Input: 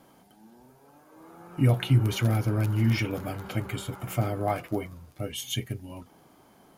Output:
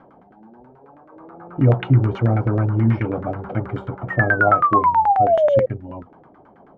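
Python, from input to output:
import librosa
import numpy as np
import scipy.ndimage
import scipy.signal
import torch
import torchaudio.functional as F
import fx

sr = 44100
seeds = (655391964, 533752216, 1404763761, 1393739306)

y = fx.spec_paint(x, sr, seeds[0], shape='fall', start_s=4.1, length_s=1.56, low_hz=510.0, high_hz=1900.0, level_db=-25.0)
y = fx.filter_lfo_lowpass(y, sr, shape='saw_down', hz=9.3, low_hz=430.0, high_hz=1700.0, q=2.1)
y = F.gain(torch.from_numpy(y), 6.0).numpy()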